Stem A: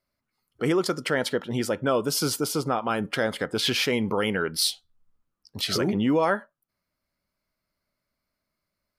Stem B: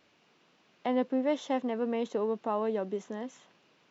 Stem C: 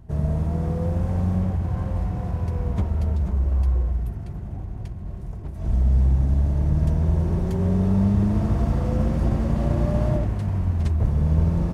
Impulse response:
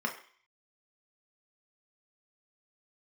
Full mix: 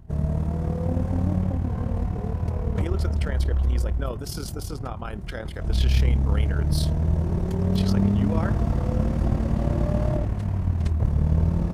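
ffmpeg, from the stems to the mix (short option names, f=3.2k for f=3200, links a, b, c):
-filter_complex "[0:a]adelay=2150,volume=-7.5dB[a];[1:a]bandpass=f=230:t=q:w=1.5:csg=0,volume=1dB[b];[2:a]volume=1dB[c];[a][b][c]amix=inputs=3:normalize=0,tremolo=f=37:d=0.571"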